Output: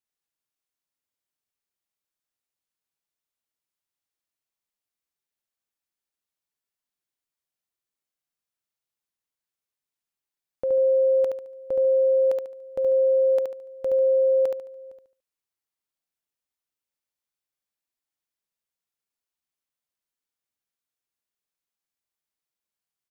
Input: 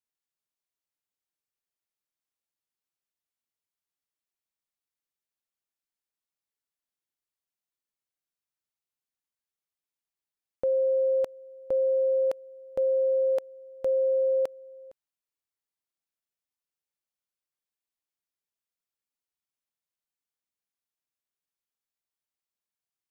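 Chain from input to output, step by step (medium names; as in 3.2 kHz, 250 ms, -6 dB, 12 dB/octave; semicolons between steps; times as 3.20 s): feedback delay 72 ms, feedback 32%, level -4 dB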